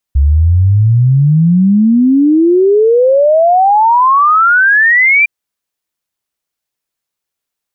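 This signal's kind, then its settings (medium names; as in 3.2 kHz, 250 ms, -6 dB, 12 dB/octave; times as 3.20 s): log sweep 67 Hz -> 2.4 kHz 5.11 s -5 dBFS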